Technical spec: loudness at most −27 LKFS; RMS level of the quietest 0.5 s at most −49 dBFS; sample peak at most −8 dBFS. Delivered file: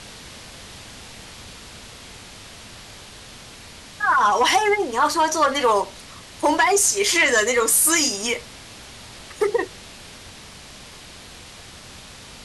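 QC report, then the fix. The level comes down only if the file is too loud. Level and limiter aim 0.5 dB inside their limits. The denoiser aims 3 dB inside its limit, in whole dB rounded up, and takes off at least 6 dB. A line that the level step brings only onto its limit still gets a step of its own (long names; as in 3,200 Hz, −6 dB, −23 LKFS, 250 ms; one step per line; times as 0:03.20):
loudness −18.5 LKFS: out of spec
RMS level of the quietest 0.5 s −42 dBFS: out of spec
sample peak −6.0 dBFS: out of spec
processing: level −9 dB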